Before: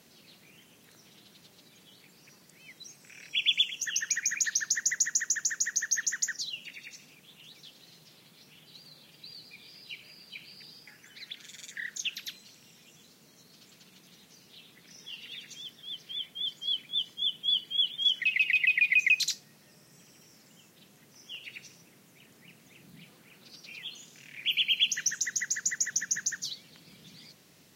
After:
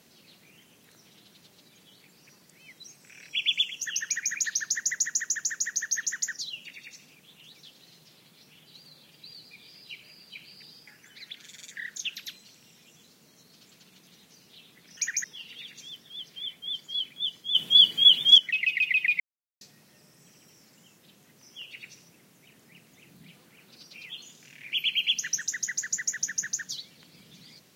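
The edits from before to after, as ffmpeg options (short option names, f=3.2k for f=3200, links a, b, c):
-filter_complex "[0:a]asplit=7[a][b][c][d][e][f][g];[a]atrim=end=14.972[h];[b]atrim=start=4.058:end=4.332[i];[c]atrim=start=14.968:end=17.282[j];[d]atrim=start=17.278:end=18.112,asetpts=PTS-STARTPTS,volume=11dB[k];[e]atrim=start=18.108:end=18.93,asetpts=PTS-STARTPTS,afade=t=out:st=0.818:d=0.004:c=hsin[l];[f]atrim=start=18.93:end=19.34,asetpts=PTS-STARTPTS,volume=0[m];[g]atrim=start=19.34,asetpts=PTS-STARTPTS,afade=t=in:d=0.004:c=hsin[n];[h][i]acrossfade=d=0.004:c1=hsin:c2=hsin[o];[o][j]acrossfade=d=0.004:c1=hsin:c2=hsin[p];[p][k]acrossfade=d=0.004:c1=hsin:c2=hsin[q];[l][m][n]concat=n=3:v=0:a=1[r];[q][r]acrossfade=d=0.004:c1=hsin:c2=hsin"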